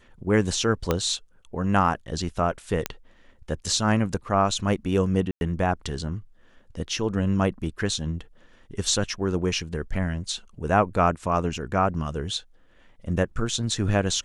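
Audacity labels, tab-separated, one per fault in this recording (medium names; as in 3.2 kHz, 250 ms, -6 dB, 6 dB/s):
0.910000	0.910000	pop -8 dBFS
2.860000	2.860000	pop -8 dBFS
5.310000	5.410000	dropout 101 ms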